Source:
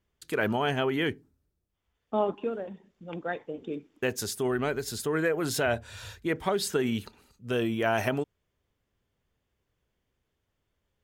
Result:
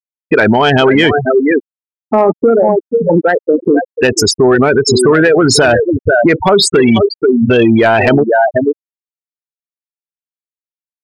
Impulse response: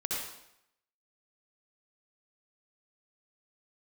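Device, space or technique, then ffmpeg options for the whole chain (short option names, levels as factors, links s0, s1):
mastering chain: -af "lowshelf=f=220:g=-5.5,aecho=1:1:488:0.266,afftfilt=real='re*gte(hypot(re,im),0.0398)':imag='im*gte(hypot(re,im),0.0398)':win_size=1024:overlap=0.75,equalizer=f=3900:t=o:w=1:g=3,acompressor=threshold=0.0224:ratio=2,asoftclip=type=tanh:threshold=0.0708,asoftclip=type=hard:threshold=0.0501,alimiter=level_in=47.3:limit=0.891:release=50:level=0:latency=1,volume=0.891"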